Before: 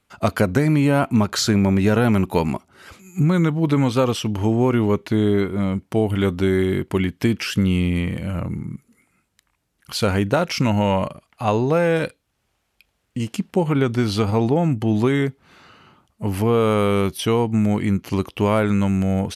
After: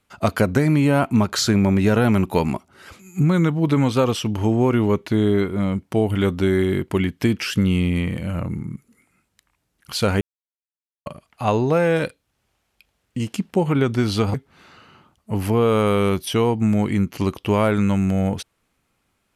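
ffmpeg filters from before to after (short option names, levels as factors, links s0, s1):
-filter_complex "[0:a]asplit=4[s0][s1][s2][s3];[s0]atrim=end=10.21,asetpts=PTS-STARTPTS,afade=t=out:st=10.206:d=0.004:c=hsin[s4];[s1]atrim=start=10.21:end=11.06,asetpts=PTS-STARTPTS,volume=0[s5];[s2]atrim=start=11.06:end=14.342,asetpts=PTS-STARTPTS,afade=t=in:d=0.004:c=hsin[s6];[s3]atrim=start=15.258[s7];[s4][s5][s6]concat=n=3:v=0:a=1[s8];[s8][s7]acrossfade=d=0.004:c1=hsin:c2=hsin"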